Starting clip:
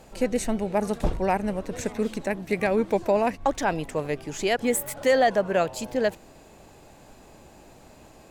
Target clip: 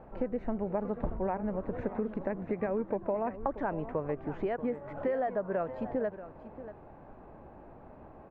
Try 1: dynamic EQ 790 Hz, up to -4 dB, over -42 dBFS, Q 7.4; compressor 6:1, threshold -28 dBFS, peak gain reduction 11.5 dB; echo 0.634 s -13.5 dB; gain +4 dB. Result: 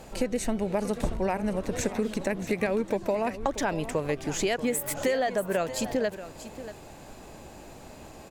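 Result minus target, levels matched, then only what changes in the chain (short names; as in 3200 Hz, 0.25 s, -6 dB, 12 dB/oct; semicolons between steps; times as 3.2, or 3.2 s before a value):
2000 Hz band +6.0 dB
add after compressor: ladder low-pass 1700 Hz, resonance 20%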